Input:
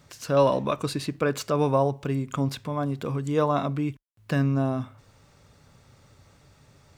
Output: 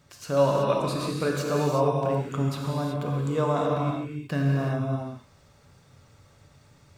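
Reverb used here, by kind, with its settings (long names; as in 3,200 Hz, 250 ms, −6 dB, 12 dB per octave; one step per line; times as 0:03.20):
reverb whose tail is shaped and stops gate 400 ms flat, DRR −2 dB
level −4.5 dB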